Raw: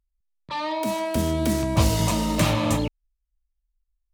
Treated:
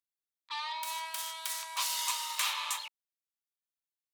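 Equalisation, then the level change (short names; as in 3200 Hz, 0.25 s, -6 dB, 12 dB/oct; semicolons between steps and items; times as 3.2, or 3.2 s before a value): elliptic high-pass 960 Hz, stop band 80 dB; bell 3600 Hz +4 dB 0.63 oct; high shelf 6000 Hz +7.5 dB; -7.0 dB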